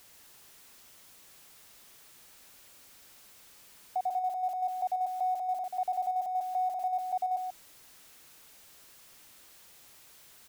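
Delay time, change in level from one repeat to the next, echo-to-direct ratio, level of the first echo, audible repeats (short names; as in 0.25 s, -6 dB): 0.136 s, no steady repeat, -7.0 dB, -7.0 dB, 1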